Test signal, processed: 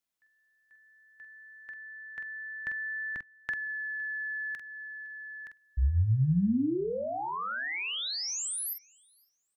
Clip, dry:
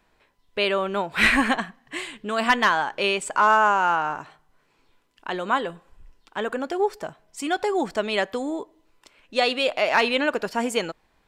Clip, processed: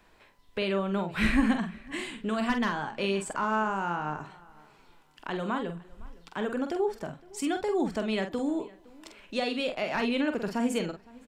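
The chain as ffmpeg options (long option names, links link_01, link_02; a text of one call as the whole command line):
ffmpeg -i in.wav -filter_complex "[0:a]acrossover=split=280[link_01][link_02];[link_02]acompressor=threshold=-46dB:ratio=2[link_03];[link_01][link_03]amix=inputs=2:normalize=0,asplit=2[link_04][link_05];[link_05]adelay=46,volume=-7dB[link_06];[link_04][link_06]amix=inputs=2:normalize=0,asplit=2[link_07][link_08];[link_08]adelay=511,lowpass=frequency=4600:poles=1,volume=-23dB,asplit=2[link_09][link_10];[link_10]adelay=511,lowpass=frequency=4600:poles=1,volume=0.25[link_11];[link_07][link_09][link_11]amix=inputs=3:normalize=0,volume=3.5dB" out.wav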